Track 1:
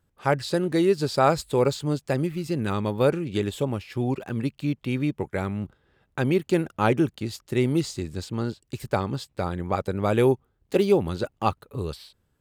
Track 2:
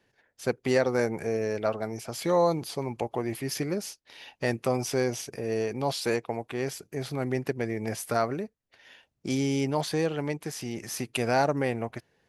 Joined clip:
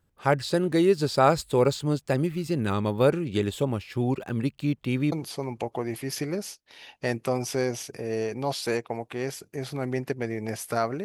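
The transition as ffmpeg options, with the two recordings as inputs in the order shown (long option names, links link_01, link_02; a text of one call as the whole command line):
ffmpeg -i cue0.wav -i cue1.wav -filter_complex "[0:a]apad=whole_dur=11.04,atrim=end=11.04,atrim=end=5.122[link_01];[1:a]atrim=start=2.508:end=8.43[link_02];[link_01][link_02]acrossfade=duration=0.004:curve1=hsin:curve2=hsin" out.wav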